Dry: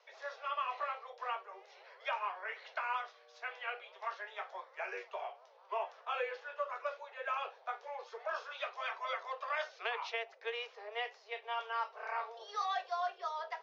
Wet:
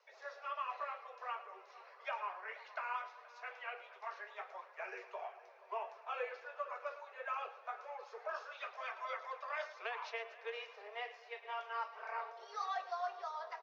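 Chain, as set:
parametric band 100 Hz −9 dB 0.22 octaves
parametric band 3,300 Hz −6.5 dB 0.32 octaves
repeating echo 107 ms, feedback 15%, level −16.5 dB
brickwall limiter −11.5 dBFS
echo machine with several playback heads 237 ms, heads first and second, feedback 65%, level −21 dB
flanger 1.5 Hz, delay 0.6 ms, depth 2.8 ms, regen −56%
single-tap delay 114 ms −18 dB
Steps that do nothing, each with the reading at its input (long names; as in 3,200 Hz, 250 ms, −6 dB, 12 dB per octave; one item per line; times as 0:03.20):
parametric band 100 Hz: nothing at its input below 360 Hz
brickwall limiter −11.5 dBFS: peak of its input −24.0 dBFS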